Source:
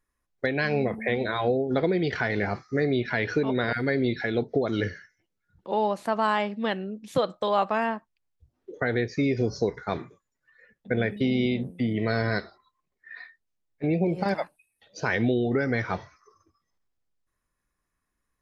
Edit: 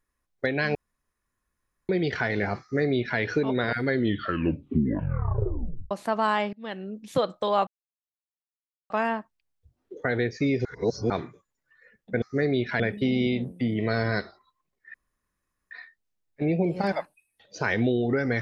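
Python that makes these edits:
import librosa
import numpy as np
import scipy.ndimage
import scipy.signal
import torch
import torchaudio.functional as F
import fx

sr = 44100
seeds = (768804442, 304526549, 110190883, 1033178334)

y = fx.edit(x, sr, fx.room_tone_fill(start_s=0.75, length_s=1.14),
    fx.duplicate(start_s=2.61, length_s=0.58, to_s=10.99),
    fx.tape_stop(start_s=3.86, length_s=2.05),
    fx.fade_in_from(start_s=6.53, length_s=0.44, floor_db=-24.0),
    fx.insert_silence(at_s=7.67, length_s=1.23),
    fx.reverse_span(start_s=9.42, length_s=0.45),
    fx.insert_room_tone(at_s=13.13, length_s=0.77), tone=tone)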